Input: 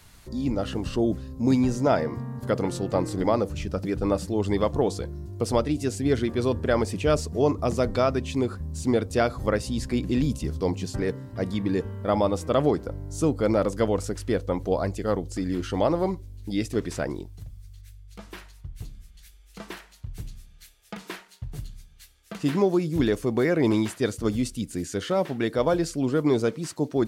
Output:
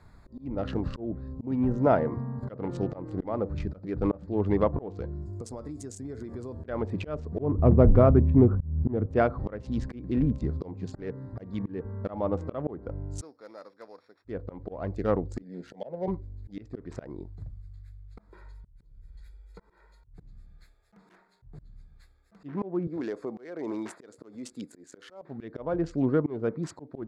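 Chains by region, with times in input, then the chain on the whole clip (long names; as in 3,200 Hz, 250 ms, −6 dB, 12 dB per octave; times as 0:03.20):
0:05.22–0:06.64: flat-topped bell 7,400 Hz +12.5 dB 1.3 octaves + hum removal 218.2 Hz, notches 29 + downward compressor 20 to 1, threshold −33 dBFS
0:07.39–0:09.06: spectral tilt −3.5 dB per octave + highs frequency-modulated by the lows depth 0.16 ms
0:13.21–0:14.25: samples sorted by size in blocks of 8 samples + band-pass filter 170–3,000 Hz + first difference
0:15.42–0:16.08: high-pass filter 180 Hz + phaser with its sweep stopped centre 310 Hz, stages 6
0:18.29–0:20.14: comb filter 2.1 ms, depth 74% + downward compressor 3 to 1, threshold −41 dBFS
0:22.87–0:25.22: high-pass filter 340 Hz + downward compressor 3 to 1, threshold −30 dBFS
whole clip: adaptive Wiener filter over 15 samples; treble cut that deepens with the level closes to 1,700 Hz, closed at −19.5 dBFS; volume swells 318 ms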